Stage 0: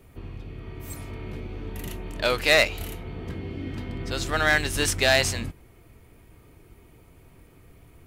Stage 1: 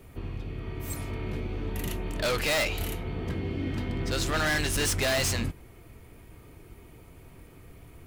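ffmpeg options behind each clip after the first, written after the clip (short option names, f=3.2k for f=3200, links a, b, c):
-af "volume=26.5dB,asoftclip=hard,volume=-26.5dB,volume=2.5dB"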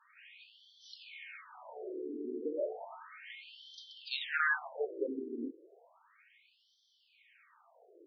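-af "afftfilt=real='re*between(b*sr/1024,320*pow(4400/320,0.5+0.5*sin(2*PI*0.33*pts/sr))/1.41,320*pow(4400/320,0.5+0.5*sin(2*PI*0.33*pts/sr))*1.41)':imag='im*between(b*sr/1024,320*pow(4400/320,0.5+0.5*sin(2*PI*0.33*pts/sr))/1.41,320*pow(4400/320,0.5+0.5*sin(2*PI*0.33*pts/sr))*1.41)':win_size=1024:overlap=0.75"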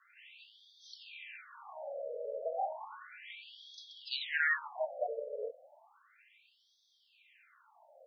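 -af "highpass=130,afreqshift=190"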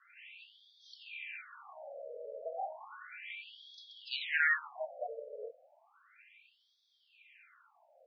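-af "highpass=470,equalizer=f=570:t=q:w=4:g=-4,equalizer=f=910:t=q:w=4:g=-7,equalizer=f=1.4k:t=q:w=4:g=3,equalizer=f=2.4k:t=q:w=4:g=6,equalizer=f=3.9k:t=q:w=4:g=-3,lowpass=f=4.8k:w=0.5412,lowpass=f=4.8k:w=1.3066"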